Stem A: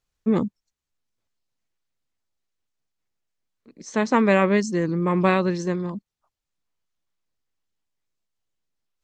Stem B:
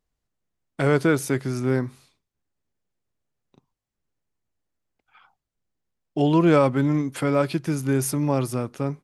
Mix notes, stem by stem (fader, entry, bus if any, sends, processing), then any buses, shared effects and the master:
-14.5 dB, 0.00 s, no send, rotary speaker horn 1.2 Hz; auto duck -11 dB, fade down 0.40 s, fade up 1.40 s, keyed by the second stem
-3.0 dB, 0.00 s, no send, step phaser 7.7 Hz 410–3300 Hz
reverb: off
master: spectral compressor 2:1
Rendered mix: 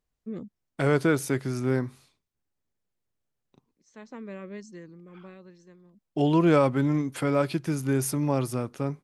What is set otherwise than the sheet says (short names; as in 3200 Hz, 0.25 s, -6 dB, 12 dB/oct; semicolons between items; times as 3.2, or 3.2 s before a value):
stem B: missing step phaser 7.7 Hz 410–3300 Hz; master: missing spectral compressor 2:1